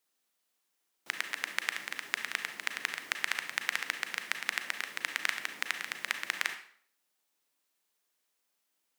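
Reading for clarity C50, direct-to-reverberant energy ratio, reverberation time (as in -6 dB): 9.0 dB, 7.0 dB, 0.55 s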